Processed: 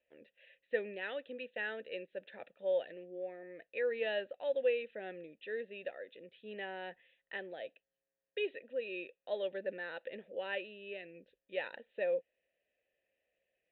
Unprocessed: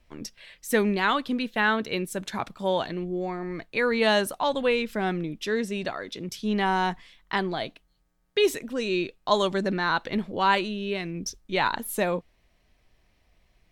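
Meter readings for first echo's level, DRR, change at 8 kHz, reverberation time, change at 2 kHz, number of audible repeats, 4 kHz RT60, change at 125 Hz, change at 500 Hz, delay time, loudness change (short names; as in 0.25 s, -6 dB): none, none, under -40 dB, none, -14.0 dB, none, none, under -25 dB, -9.5 dB, none, -13.0 dB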